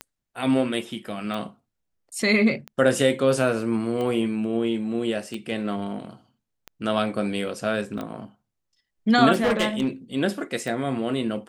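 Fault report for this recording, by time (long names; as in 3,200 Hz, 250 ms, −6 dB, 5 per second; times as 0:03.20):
scratch tick 45 rpm −19 dBFS
0:07.98: drop-out 2.7 ms
0:09.40–0:09.88: clipping −17 dBFS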